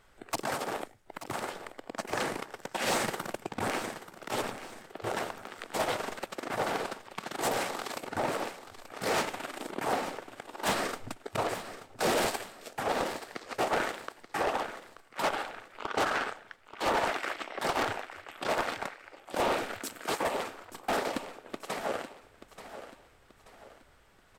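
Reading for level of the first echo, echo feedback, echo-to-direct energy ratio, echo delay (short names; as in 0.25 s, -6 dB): -12.5 dB, 39%, -12.0 dB, 0.882 s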